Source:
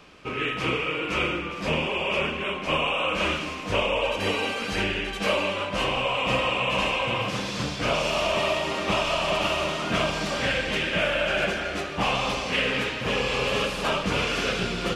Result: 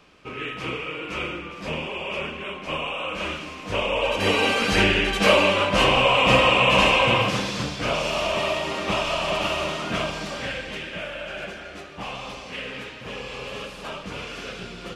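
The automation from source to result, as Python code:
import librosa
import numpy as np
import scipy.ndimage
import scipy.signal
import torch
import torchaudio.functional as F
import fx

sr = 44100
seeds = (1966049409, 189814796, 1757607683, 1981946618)

y = fx.gain(x, sr, db=fx.line((3.51, -4.0), (4.54, 7.5), (7.11, 7.5), (7.71, 0.0), (9.73, 0.0), (11.08, -9.0)))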